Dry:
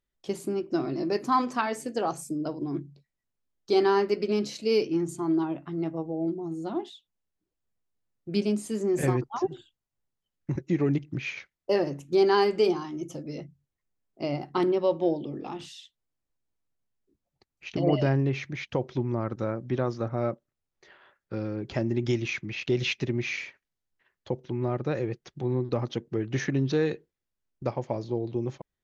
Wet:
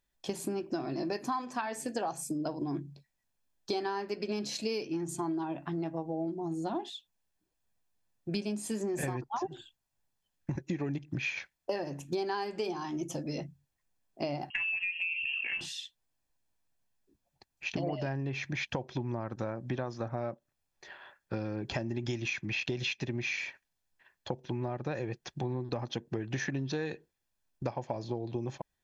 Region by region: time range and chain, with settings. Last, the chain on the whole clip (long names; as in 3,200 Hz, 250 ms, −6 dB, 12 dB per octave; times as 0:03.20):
0:14.50–0:15.61: voice inversion scrambler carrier 3,000 Hz + downward compressor 4 to 1, threshold −29 dBFS
whole clip: bass and treble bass −5 dB, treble +1 dB; comb filter 1.2 ms, depth 38%; downward compressor 10 to 1, threshold −35 dBFS; level +4.5 dB